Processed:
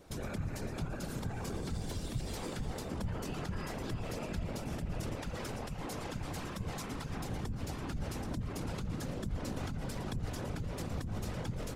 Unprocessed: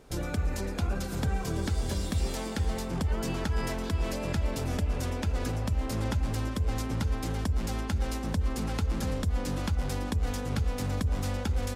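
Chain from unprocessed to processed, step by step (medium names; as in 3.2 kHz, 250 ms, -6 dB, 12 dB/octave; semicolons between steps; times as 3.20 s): 5.15–7.17 s: bass shelf 310 Hz -9 dB; peak limiter -28.5 dBFS, peak gain reduction 8.5 dB; whisper effect; trim -2 dB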